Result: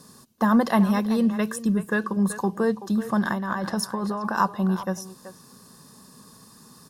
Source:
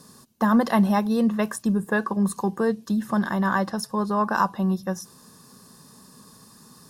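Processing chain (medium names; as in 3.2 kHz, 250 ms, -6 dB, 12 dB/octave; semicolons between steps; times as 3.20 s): 0.88–2.19 s: peaking EQ 760 Hz -9.5 dB 0.63 oct; 3.25–4.37 s: compressor with a negative ratio -27 dBFS, ratio -1; speakerphone echo 380 ms, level -12 dB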